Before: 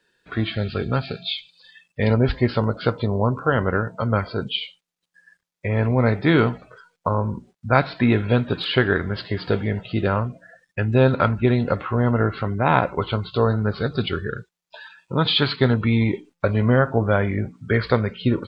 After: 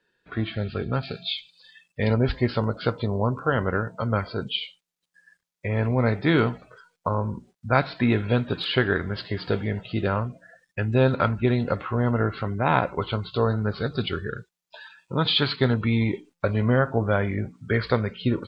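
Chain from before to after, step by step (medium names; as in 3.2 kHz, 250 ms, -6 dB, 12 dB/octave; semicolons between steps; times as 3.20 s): treble shelf 4.6 kHz -10 dB, from 1.03 s +4 dB; trim -3.5 dB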